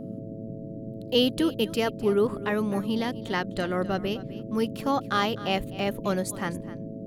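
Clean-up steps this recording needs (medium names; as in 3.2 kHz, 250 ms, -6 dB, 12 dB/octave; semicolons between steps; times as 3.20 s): de-hum 109.6 Hz, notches 6; noise print and reduce 30 dB; inverse comb 255 ms -16.5 dB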